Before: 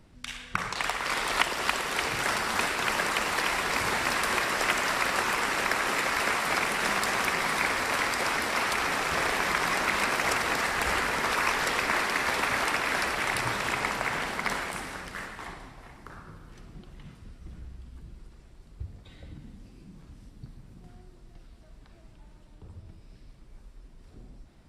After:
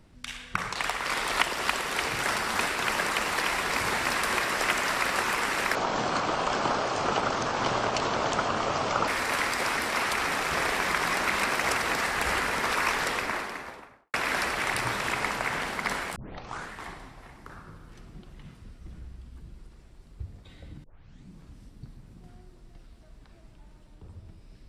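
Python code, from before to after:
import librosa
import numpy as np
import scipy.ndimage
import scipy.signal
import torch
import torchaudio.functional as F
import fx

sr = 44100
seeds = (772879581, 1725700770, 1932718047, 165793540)

y = fx.studio_fade_out(x, sr, start_s=11.53, length_s=1.21)
y = fx.edit(y, sr, fx.speed_span(start_s=5.75, length_s=1.93, speed=0.58),
    fx.tape_start(start_s=14.76, length_s=0.55),
    fx.tape_start(start_s=19.44, length_s=0.46), tone=tone)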